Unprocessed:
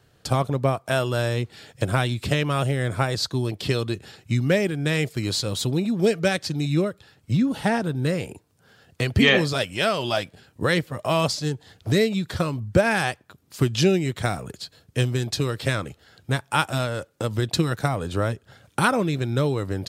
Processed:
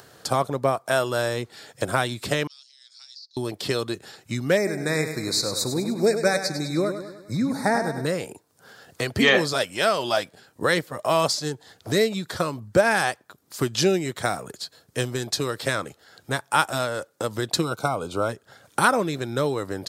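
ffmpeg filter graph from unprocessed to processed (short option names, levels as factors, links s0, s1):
-filter_complex "[0:a]asettb=1/sr,asplit=3[s0][s1][s2];[s0]atrim=end=2.474[s3];[s1]atrim=start=2.47:end=3.37,asetpts=PTS-STARTPTS,afade=t=in:d=0.004:c=qsin,afade=t=out:st=0.896:d=0.004:c=qsin,asuperpass=centerf=4800:order=4:qfactor=3.6,acompressor=threshold=0.00708:ratio=16:attack=3.2:release=140:knee=1:detection=peak[s4];[s2]atrim=start=3.366[s5];[s3][s4]acrossfade=d=0.004:c1=hsin:c2=qsin[s6];[s6][s5]acrossfade=d=0.004:c1=qsin:c2=hsin,asettb=1/sr,asplit=3[s7][s8][s9];[s7]atrim=end=4.574[s10];[s8]atrim=start=4.57:end=8.06,asetpts=PTS-STARTPTS,afade=t=in:d=0.004:c=qsin,afade=t=out:st=3.486:d=0.004:c=qsin,asuperstop=centerf=3000:order=12:qfactor=2.5,aecho=1:1:101|202|303|404|505|606:0.355|0.181|0.0923|0.0471|0.024|0.0122,atrim=end_sample=153909[s11];[s9]atrim=start=8.056[s12];[s10][s11]acrossfade=d=0.004:c1=hsin:c2=qsin[s13];[s13][s12]acrossfade=d=0.004:c1=qsin:c2=hsin,asettb=1/sr,asplit=3[s14][s15][s16];[s14]atrim=end=17.634[s17];[s15]atrim=start=17.63:end=18.29,asetpts=PTS-STARTPTS,afade=t=in:d=0.004:c=qsin,afade=t=out:st=0.656:d=0.004:c=qsin,asuperstop=centerf=1800:order=12:qfactor=3.1,highshelf=f=5400:g=-4[s18];[s16]atrim=start=18.286[s19];[s17][s18]acrossfade=d=0.004:c1=hsin:c2=qsin[s20];[s20][s19]acrossfade=d=0.004:c1=qsin:c2=hsin,highpass=f=490:p=1,equalizer=f=2700:w=1.6:g=-7,acompressor=mode=upward:threshold=0.00631:ratio=2.5,volume=1.58"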